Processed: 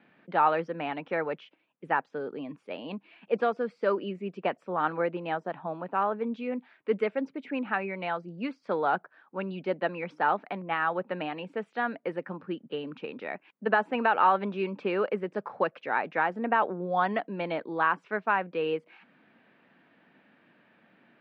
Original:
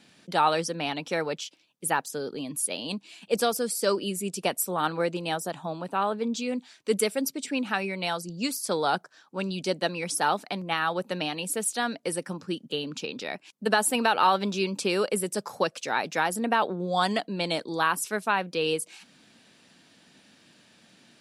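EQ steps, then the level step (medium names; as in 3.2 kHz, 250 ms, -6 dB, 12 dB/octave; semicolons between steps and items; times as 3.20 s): high-pass 120 Hz; low-pass 2.2 kHz 24 dB/octave; bass shelf 270 Hz -5.5 dB; 0.0 dB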